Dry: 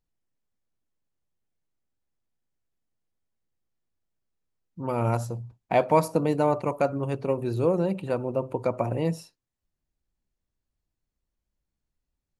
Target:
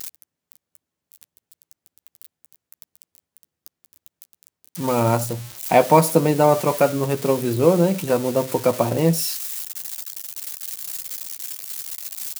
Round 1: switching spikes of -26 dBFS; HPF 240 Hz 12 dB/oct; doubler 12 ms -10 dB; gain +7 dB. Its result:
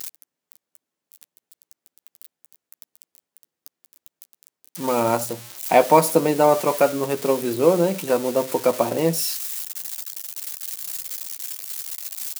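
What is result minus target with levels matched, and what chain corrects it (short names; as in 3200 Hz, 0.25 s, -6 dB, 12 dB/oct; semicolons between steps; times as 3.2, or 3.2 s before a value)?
125 Hz band -7.5 dB
switching spikes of -26 dBFS; HPF 85 Hz 12 dB/oct; doubler 12 ms -10 dB; gain +7 dB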